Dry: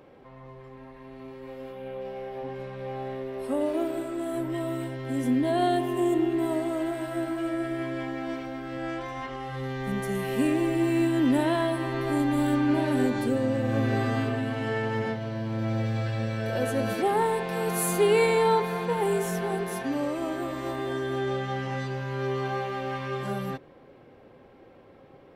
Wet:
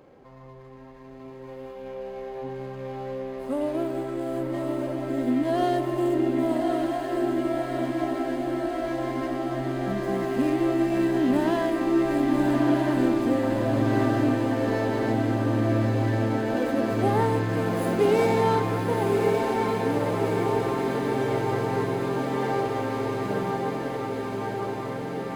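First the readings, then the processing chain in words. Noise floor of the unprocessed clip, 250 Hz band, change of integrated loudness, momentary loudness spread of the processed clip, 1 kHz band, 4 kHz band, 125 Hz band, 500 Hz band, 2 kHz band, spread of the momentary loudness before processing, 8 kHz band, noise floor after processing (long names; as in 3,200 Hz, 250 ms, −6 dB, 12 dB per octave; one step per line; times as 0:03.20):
−52 dBFS, +3.0 dB, +2.5 dB, 9 LU, +2.5 dB, −0.5 dB, +2.5 dB, +2.5 dB, +0.5 dB, 13 LU, can't be measured, −42 dBFS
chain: running median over 15 samples
notch filter 5,600 Hz, Q 12
on a send: feedback delay with all-pass diffusion 1,203 ms, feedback 77%, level −3.5 dB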